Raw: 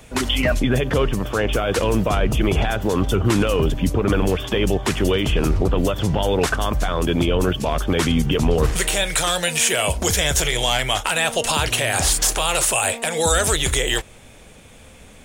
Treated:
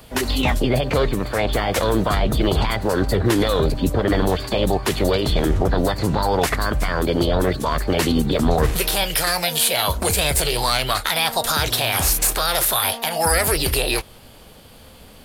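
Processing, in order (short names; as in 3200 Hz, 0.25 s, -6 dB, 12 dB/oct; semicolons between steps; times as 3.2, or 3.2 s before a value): formant shift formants +5 st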